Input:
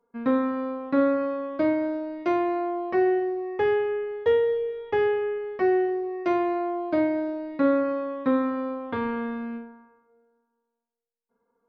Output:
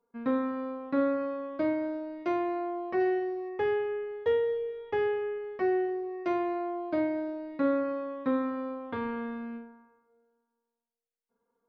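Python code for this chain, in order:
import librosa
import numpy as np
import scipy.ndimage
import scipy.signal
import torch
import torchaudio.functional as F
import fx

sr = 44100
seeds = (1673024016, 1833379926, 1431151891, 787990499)

y = fx.high_shelf(x, sr, hz=fx.line((2.99, 3100.0), (3.48, 3700.0)), db=11.0, at=(2.99, 3.48), fade=0.02)
y = y * 10.0 ** (-5.5 / 20.0)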